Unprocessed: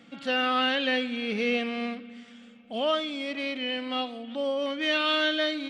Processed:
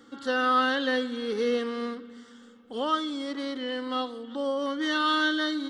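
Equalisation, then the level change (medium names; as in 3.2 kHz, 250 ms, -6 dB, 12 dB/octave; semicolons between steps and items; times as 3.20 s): static phaser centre 660 Hz, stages 6; +5.0 dB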